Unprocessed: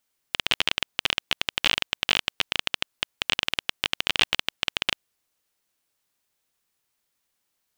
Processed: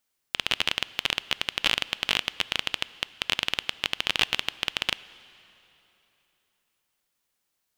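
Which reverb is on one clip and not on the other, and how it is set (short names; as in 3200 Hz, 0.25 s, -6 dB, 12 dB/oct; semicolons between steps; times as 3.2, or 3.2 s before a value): plate-style reverb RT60 3.4 s, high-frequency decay 0.85×, DRR 18 dB; gain -1.5 dB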